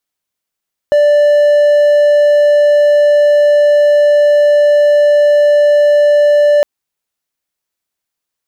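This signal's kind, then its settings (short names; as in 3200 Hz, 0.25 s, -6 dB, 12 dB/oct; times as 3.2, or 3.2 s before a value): tone triangle 587 Hz -3.5 dBFS 5.71 s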